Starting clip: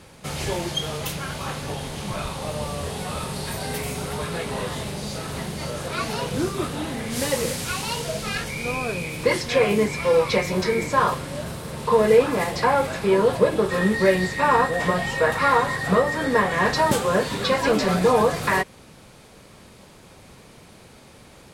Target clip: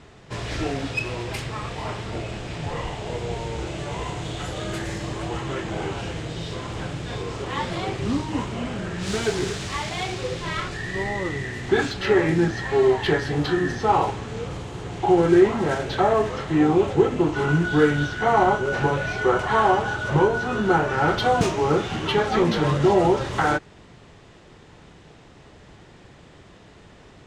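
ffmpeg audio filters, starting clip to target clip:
-af "asetrate=34839,aresample=44100,adynamicsmooth=sensitivity=1.5:basefreq=5700"

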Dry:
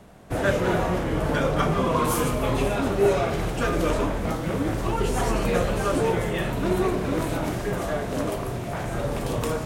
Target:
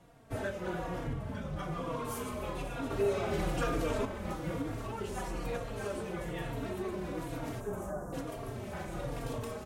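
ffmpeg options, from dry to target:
-filter_complex "[0:a]asettb=1/sr,asplit=3[s0][s1][s2];[s0]atrim=end=1.074[s3];[s1]atrim=start=1.07:end=1.57,asetpts=PTS-STARTPTS,afade=t=in:d=0.004:c=qsin,afade=t=out:st=0.496:d=0.004:c=qsin,lowshelf=f=260:t=q:w=1.5:g=9[s4];[s2]atrim=start=1.566[s5];[s3][s4]acrossfade=d=0.004:c1=hsin:c2=qsin[s6];[s6][s5]acrossfade=d=0.004:c1=qsin:c2=hsin,alimiter=limit=0.133:level=0:latency=1:release=482,asettb=1/sr,asplit=3[s7][s8][s9];[s7]atrim=end=2.904[s10];[s8]atrim=start=2.9:end=4.05,asetpts=PTS-STARTPTS,afade=t=in:d=0.004:c=qsin,afade=t=out:st=1.146:d=0.004:c=qsin,acontrast=36[s11];[s9]atrim=start=4.046[s12];[s10][s11]acrossfade=d=0.004:c1=hsin:c2=qsin[s13];[s13][s12]acrossfade=d=0.004:c1=qsin:c2=hsin,asplit=3[s14][s15][s16];[s14]afade=t=out:st=7.59:d=0.02[s17];[s15]asuperstop=centerf=3100:order=8:qfactor=0.66,afade=t=in:st=7.59:d=0.02,afade=t=out:st=8.12:d=0.02[s18];[s16]afade=t=in:st=8.12:d=0.02[s19];[s17][s18][s19]amix=inputs=3:normalize=0,asplit=2[s20][s21];[s21]adelay=300,highpass=300,lowpass=3400,asoftclip=type=hard:threshold=0.0841,volume=0.282[s22];[s20][s22]amix=inputs=2:normalize=0,asplit=2[s23][s24];[s24]adelay=3.7,afreqshift=-1.1[s25];[s23][s25]amix=inputs=2:normalize=1,volume=0.447"

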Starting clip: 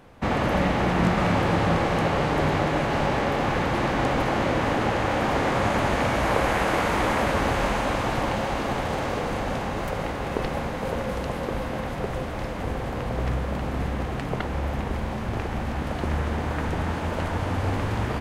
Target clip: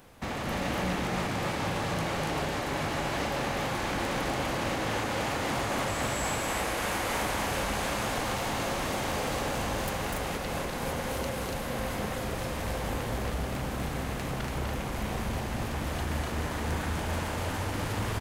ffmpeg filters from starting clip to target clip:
-filter_complex "[0:a]alimiter=limit=0.133:level=0:latency=1:release=309,asoftclip=type=tanh:threshold=0.0708,crystalizer=i=3:c=0,asettb=1/sr,asplit=3[s0][s1][s2];[s0]atrim=end=5.884[s3];[s1]atrim=start=5.88:end=6.35,asetpts=PTS-STARTPTS,afade=t=in:d=0.004:c=qsin,afade=t=out:st=0.466:d=0.004:c=qsin,aeval=exprs='val(0)+0.0112*sin(2*PI*7700*n/s)':c=same[s4];[s2]atrim=start=6.346[s5];[s3][s4]acrossfade=d=0.004:c1=hsin:c2=qsin[s6];[s6][s5]acrossfade=d=0.004:c1=qsin:c2=hsin,aecho=1:1:247.8|285.7:0.708|0.708,volume=0.562"

